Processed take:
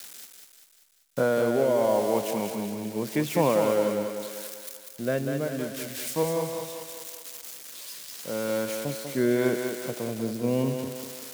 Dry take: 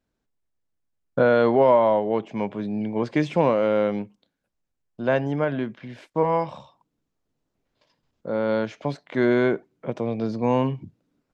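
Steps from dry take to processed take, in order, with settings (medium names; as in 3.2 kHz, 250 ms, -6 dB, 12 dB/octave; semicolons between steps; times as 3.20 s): zero-crossing glitches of -21.5 dBFS; rotary cabinet horn 0.8 Hz; thinning echo 195 ms, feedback 56%, high-pass 230 Hz, level -5 dB; trim -3 dB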